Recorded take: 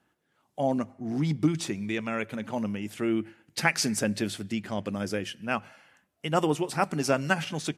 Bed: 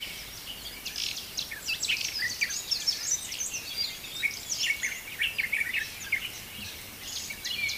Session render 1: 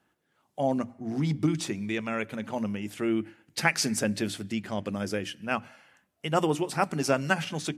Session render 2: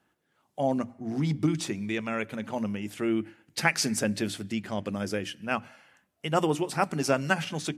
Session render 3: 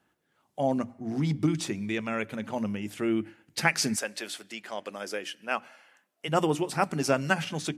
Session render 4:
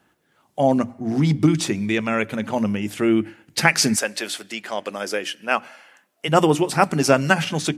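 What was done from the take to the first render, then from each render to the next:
mains-hum notches 60/120/180/240/300 Hz
no processing that can be heard
0:03.95–0:06.27: high-pass filter 690 Hz → 300 Hz
level +9 dB; brickwall limiter −1 dBFS, peak gain reduction 2 dB

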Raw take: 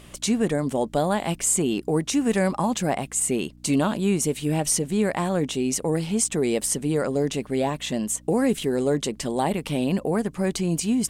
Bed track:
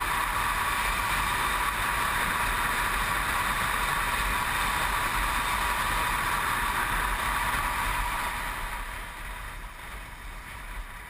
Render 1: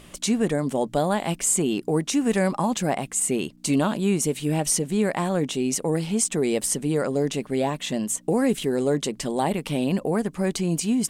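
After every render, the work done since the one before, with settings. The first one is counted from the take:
hum removal 60 Hz, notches 2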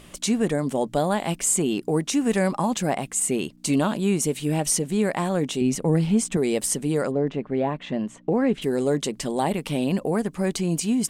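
0:05.61–0:06.37: bass and treble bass +8 dB, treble −6 dB
0:07.10–0:08.61: low-pass filter 1,600 Hz → 2,900 Hz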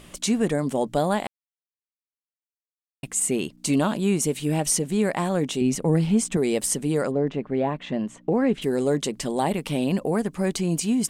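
0:01.27–0:03.03: silence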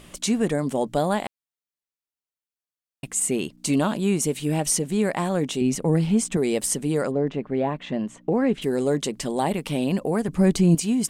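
0:10.28–0:10.75: low-shelf EQ 310 Hz +11 dB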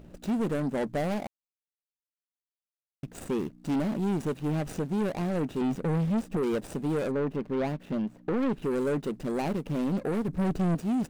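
running median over 41 samples
soft clipping −23.5 dBFS, distortion −9 dB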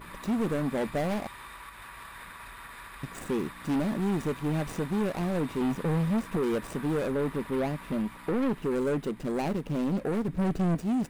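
mix in bed track −18 dB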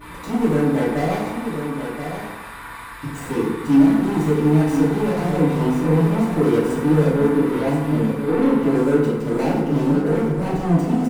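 single-tap delay 1,028 ms −8 dB
feedback delay network reverb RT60 1.1 s, low-frequency decay 0.95×, high-frequency decay 0.5×, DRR −8 dB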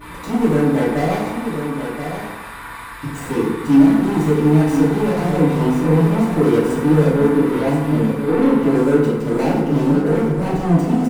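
level +2.5 dB

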